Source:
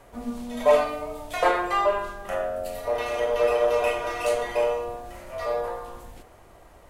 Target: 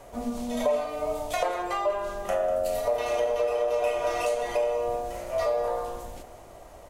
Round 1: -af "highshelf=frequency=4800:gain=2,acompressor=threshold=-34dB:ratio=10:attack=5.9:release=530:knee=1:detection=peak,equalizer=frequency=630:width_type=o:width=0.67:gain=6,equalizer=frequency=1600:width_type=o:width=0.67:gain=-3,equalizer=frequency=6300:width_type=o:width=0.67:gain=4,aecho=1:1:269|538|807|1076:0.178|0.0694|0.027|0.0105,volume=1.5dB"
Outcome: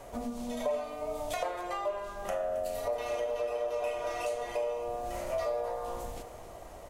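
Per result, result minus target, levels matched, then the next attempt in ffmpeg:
echo 74 ms late; downward compressor: peak gain reduction +6.5 dB
-af "highshelf=frequency=4800:gain=2,acompressor=threshold=-34dB:ratio=10:attack=5.9:release=530:knee=1:detection=peak,equalizer=frequency=630:width_type=o:width=0.67:gain=6,equalizer=frequency=1600:width_type=o:width=0.67:gain=-3,equalizer=frequency=6300:width_type=o:width=0.67:gain=4,aecho=1:1:195|390|585|780:0.178|0.0694|0.027|0.0105,volume=1.5dB"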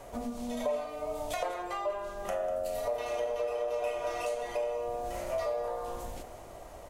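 downward compressor: peak gain reduction +6.5 dB
-af "highshelf=frequency=4800:gain=2,acompressor=threshold=-26.5dB:ratio=10:attack=5.9:release=530:knee=1:detection=peak,equalizer=frequency=630:width_type=o:width=0.67:gain=6,equalizer=frequency=1600:width_type=o:width=0.67:gain=-3,equalizer=frequency=6300:width_type=o:width=0.67:gain=4,aecho=1:1:195|390|585|780:0.178|0.0694|0.027|0.0105,volume=1.5dB"

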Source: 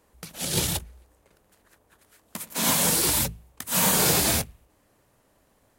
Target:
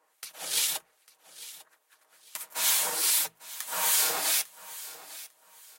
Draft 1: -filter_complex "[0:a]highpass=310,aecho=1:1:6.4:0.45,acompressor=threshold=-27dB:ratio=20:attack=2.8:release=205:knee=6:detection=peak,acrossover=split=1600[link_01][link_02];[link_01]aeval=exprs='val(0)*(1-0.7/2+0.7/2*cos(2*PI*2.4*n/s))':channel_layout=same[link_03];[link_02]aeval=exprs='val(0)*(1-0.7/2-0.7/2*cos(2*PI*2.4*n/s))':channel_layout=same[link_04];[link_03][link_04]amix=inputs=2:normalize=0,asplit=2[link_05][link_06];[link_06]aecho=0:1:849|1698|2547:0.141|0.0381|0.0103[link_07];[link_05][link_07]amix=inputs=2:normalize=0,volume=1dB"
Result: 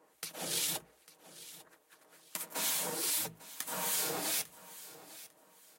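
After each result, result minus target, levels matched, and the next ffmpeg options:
250 Hz band +14.5 dB; downward compressor: peak gain reduction +10 dB
-filter_complex "[0:a]highpass=800,aecho=1:1:6.4:0.45,acompressor=threshold=-27dB:ratio=20:attack=2.8:release=205:knee=6:detection=peak,acrossover=split=1600[link_01][link_02];[link_01]aeval=exprs='val(0)*(1-0.7/2+0.7/2*cos(2*PI*2.4*n/s))':channel_layout=same[link_03];[link_02]aeval=exprs='val(0)*(1-0.7/2-0.7/2*cos(2*PI*2.4*n/s))':channel_layout=same[link_04];[link_03][link_04]amix=inputs=2:normalize=0,asplit=2[link_05][link_06];[link_06]aecho=0:1:849|1698|2547:0.141|0.0381|0.0103[link_07];[link_05][link_07]amix=inputs=2:normalize=0,volume=1dB"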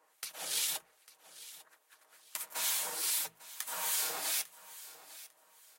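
downward compressor: peak gain reduction +9 dB
-filter_complex "[0:a]highpass=800,aecho=1:1:6.4:0.45,acompressor=threshold=-16.5dB:ratio=20:attack=2.8:release=205:knee=6:detection=peak,acrossover=split=1600[link_01][link_02];[link_01]aeval=exprs='val(0)*(1-0.7/2+0.7/2*cos(2*PI*2.4*n/s))':channel_layout=same[link_03];[link_02]aeval=exprs='val(0)*(1-0.7/2-0.7/2*cos(2*PI*2.4*n/s))':channel_layout=same[link_04];[link_03][link_04]amix=inputs=2:normalize=0,asplit=2[link_05][link_06];[link_06]aecho=0:1:849|1698|2547:0.141|0.0381|0.0103[link_07];[link_05][link_07]amix=inputs=2:normalize=0,volume=1dB"

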